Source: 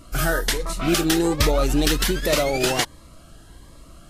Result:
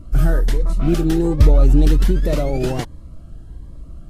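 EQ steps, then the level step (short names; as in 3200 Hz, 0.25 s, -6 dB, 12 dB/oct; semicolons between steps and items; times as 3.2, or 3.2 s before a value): tilt shelf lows +6.5 dB; low shelf 190 Hz +12 dB; -6.0 dB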